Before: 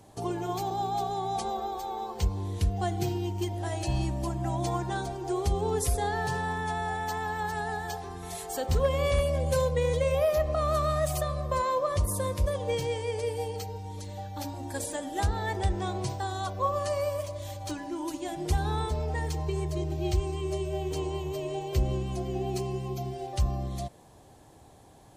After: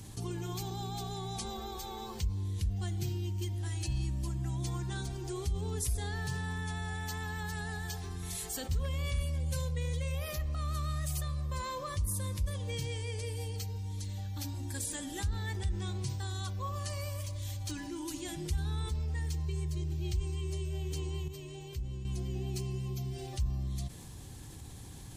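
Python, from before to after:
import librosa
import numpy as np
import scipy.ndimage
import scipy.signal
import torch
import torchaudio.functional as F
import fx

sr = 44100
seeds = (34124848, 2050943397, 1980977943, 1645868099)

y = fx.edit(x, sr, fx.clip_gain(start_s=21.28, length_s=0.77, db=-11.5), tone=tone)
y = fx.tone_stack(y, sr, knobs='6-0-2')
y = fx.notch(y, sr, hz=640.0, q=12.0)
y = fx.env_flatten(y, sr, amount_pct=50)
y = F.gain(torch.from_numpy(y), 5.5).numpy()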